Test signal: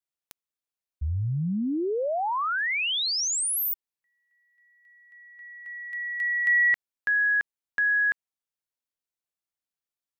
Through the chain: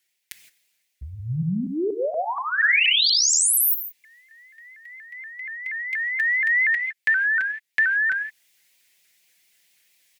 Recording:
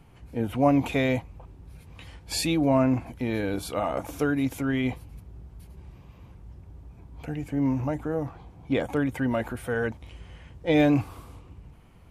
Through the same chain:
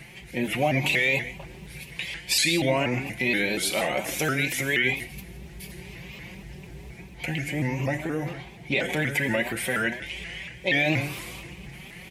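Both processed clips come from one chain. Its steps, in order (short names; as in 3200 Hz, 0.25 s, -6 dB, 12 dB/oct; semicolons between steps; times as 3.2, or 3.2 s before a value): HPF 150 Hz 6 dB/oct; resonant high shelf 1600 Hz +8 dB, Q 3; comb 5.5 ms, depth 68%; reverse; upward compressor 1.5:1, threshold -34 dBFS; reverse; limiter -13 dBFS; in parallel at +2.5 dB: compressor, threshold -32 dBFS; on the sum: non-linear reverb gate 0.19 s flat, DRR 8 dB; shaped vibrato saw up 4.2 Hz, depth 160 cents; gain -3 dB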